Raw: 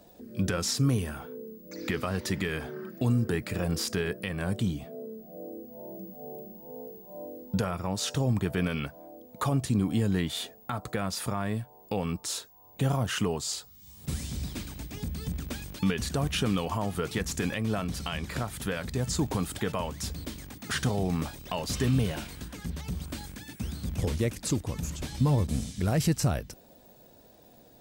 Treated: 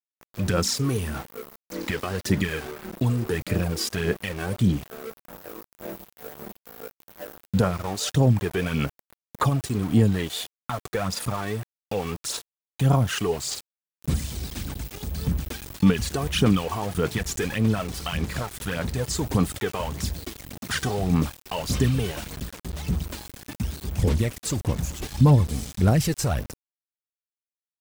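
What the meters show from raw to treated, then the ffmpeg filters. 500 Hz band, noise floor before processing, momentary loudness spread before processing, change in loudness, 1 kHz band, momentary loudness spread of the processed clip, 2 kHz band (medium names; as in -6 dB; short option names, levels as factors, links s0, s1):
+5.0 dB, -55 dBFS, 15 LU, +5.0 dB, +4.5 dB, 18 LU, +4.0 dB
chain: -af "aphaser=in_gain=1:out_gain=1:delay=2.7:decay=0.56:speed=1.7:type=sinusoidal,aeval=exprs='val(0)*gte(abs(val(0)),0.015)':c=same,volume=1.26"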